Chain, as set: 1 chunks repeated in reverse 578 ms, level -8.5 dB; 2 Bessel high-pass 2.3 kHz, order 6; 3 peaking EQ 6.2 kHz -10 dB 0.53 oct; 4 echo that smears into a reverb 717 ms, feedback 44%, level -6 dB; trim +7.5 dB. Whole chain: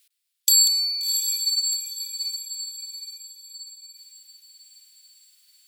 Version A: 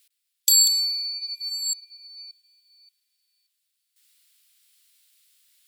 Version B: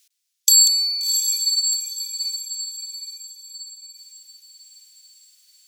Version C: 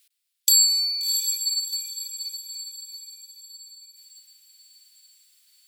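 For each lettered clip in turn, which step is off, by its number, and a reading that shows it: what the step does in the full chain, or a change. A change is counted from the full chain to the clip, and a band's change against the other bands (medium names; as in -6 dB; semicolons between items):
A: 4, echo-to-direct -5.0 dB to none; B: 3, loudness change +3.5 LU; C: 1, momentary loudness spread change -2 LU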